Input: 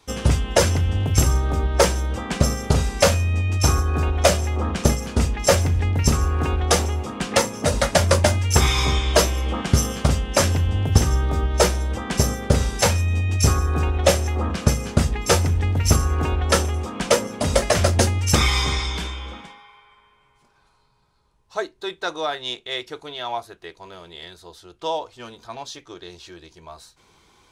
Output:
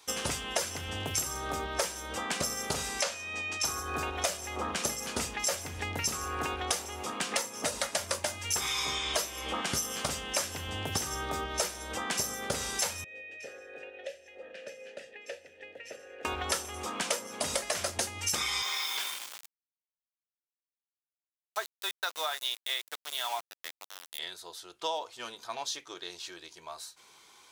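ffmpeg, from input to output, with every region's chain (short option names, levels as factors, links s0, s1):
-filter_complex "[0:a]asettb=1/sr,asplit=3[s0][s1][s2];[s0]atrim=end=3.014[s3];[s1]atrim=start=3.01:end=3.65,asetpts=PTS-STARTPTS,afade=t=in:d=0.004:c=qsin,afade=t=out:st=0.636:d=0.004:c=qsin,highpass=110,lowpass=7100,lowshelf=f=270:g=-8.5[s4];[s2]atrim=start=3.646[s5];[s3][s4]acrossfade=d=0.004:c1=hsin:c2=qsin[s6];[s6][s5]acrossfade=d=0.004:c1=qsin:c2=hsin,asettb=1/sr,asplit=3[s7][s8][s9];[s7]atrim=end=13.044[s10];[s8]atrim=start=13.04:end=16.25,asetpts=PTS-STARTPTS,afade=t=in:d=0.004:c=qsin,afade=t=out:st=3.206:d=0.004:c=qsin,asplit=3[s11][s12][s13];[s11]bandpass=f=530:t=q:w=8,volume=1[s14];[s12]bandpass=f=1840:t=q:w=8,volume=0.501[s15];[s13]bandpass=f=2480:t=q:w=8,volume=0.355[s16];[s14][s15][s16]amix=inputs=3:normalize=0,acrossover=split=140|2500[s17][s18][s19];[s17]acompressor=threshold=0.00126:ratio=4[s20];[s18]acompressor=threshold=0.0141:ratio=4[s21];[s19]acompressor=threshold=0.00224:ratio=4[s22];[s20][s21][s22]amix=inputs=3:normalize=0[s23];[s9]atrim=start=16.246[s24];[s10][s23]acrossfade=d=0.004:c1=hsin:c2=qsin[s25];[s25][s24]acrossfade=d=0.004:c1=qsin:c2=hsin,asettb=1/sr,asplit=3[s26][s27][s28];[s26]atrim=end=18.624[s29];[s27]atrim=start=18.62:end=24.19,asetpts=PTS-STARTPTS,afade=t=in:d=0.004:c=qsin,afade=t=out:st=5.566:d=0.004:c=qsin,highpass=660,lowpass=6600,aeval=exprs='val(0)*gte(abs(val(0)),0.0188)':c=same[s30];[s28]atrim=start=24.186[s31];[s29][s30]acrossfade=d=0.004:c1=hsin:c2=qsin[s32];[s32][s31]acrossfade=d=0.004:c1=qsin:c2=hsin,highpass=f=820:p=1,highshelf=f=6600:g=7,acompressor=threshold=0.0355:ratio=6"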